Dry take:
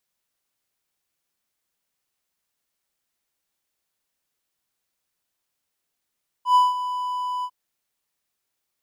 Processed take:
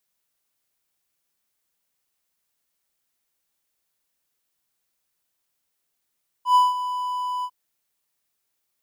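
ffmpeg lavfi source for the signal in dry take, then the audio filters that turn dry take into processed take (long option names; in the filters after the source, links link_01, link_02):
-f lavfi -i "aevalsrc='0.335*(1-4*abs(mod(995*t+0.25,1)-0.5))':duration=1.049:sample_rate=44100,afade=type=in:duration=0.103,afade=type=out:start_time=0.103:duration=0.182:silence=0.224,afade=type=out:start_time=0.99:duration=0.059"
-af "highshelf=frequency=8800:gain=5"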